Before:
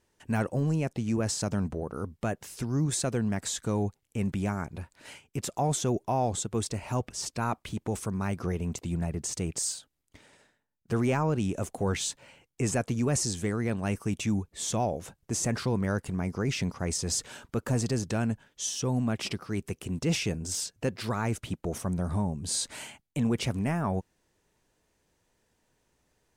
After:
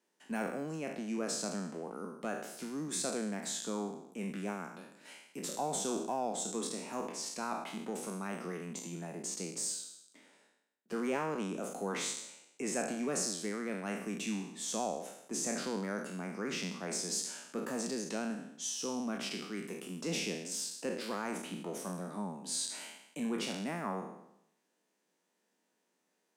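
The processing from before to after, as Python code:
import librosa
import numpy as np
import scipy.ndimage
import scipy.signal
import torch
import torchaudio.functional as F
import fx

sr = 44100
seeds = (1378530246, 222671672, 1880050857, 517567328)

y = fx.spec_trails(x, sr, decay_s=0.8)
y = scipy.signal.sosfilt(scipy.signal.butter(8, 180.0, 'highpass', fs=sr, output='sos'), y)
y = fx.cheby_harmonics(y, sr, harmonics=(6,), levels_db=(-38,), full_scale_db=-10.5)
y = y * librosa.db_to_amplitude(-8.0)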